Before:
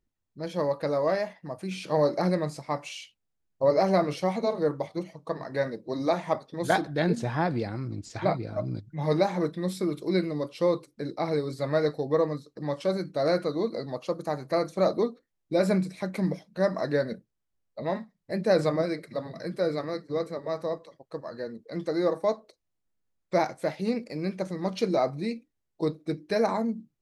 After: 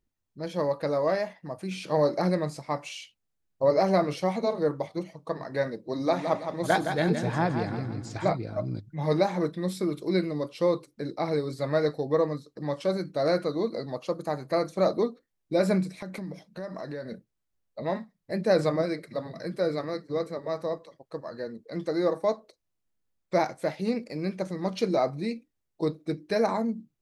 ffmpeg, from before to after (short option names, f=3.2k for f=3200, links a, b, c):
-filter_complex "[0:a]asettb=1/sr,asplit=3[a][b][c];[a]atrim=end=5.934[d];[b]atrim=start=5.93:end=8.32,asetpts=PTS-STARTPTS,afade=t=in:d=0.004:c=qsin,afade=t=out:st=2.386:d=0.004:c=qsin,aecho=1:1:165|330|495|660|825:0.422|0.169|0.0675|0.027|0.0108,atrim=end_sample=105399[e];[c]atrim=start=8.316[f];[d][e]acrossfade=d=0.004:c1=hsin:c2=qsin[g];[g][f]acrossfade=d=0.004:c1=qsin:c2=hsin,asettb=1/sr,asplit=3[h][i][j];[h]atrim=end=14.174[k];[i]atrim=start=14.17:end=14.59,asetpts=PTS-STARTPTS,afade=t=in:d=0.004:c=qsin,afade=t=out:st=0.416:d=0.004:c=qsin,bandreject=f=5.7k:w=12[l];[j]atrim=start=14.586[m];[k][l]acrossfade=d=0.004:c1=hsin:c2=qsin[n];[n][m]acrossfade=d=0.004:c1=qsin:c2=hsin,asplit=3[o][p][q];[o]afade=t=out:st=15.97:d=0.02[r];[p]acompressor=threshold=-33dB:ratio=6:attack=3.2:release=140:knee=1:detection=peak,afade=t=in:st=15.97:d=0.02,afade=t=out:st=17.12:d=0.02[s];[q]afade=t=in:st=17.12:d=0.02[t];[r][s][t]amix=inputs=3:normalize=0"